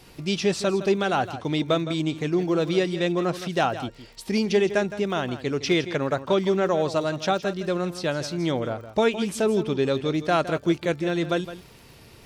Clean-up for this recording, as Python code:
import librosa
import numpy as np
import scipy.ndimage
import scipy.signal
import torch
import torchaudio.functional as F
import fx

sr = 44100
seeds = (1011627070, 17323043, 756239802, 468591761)

y = fx.fix_declip(x, sr, threshold_db=-11.5)
y = fx.fix_declick_ar(y, sr, threshold=6.5)
y = fx.fix_echo_inverse(y, sr, delay_ms=163, level_db=-13.0)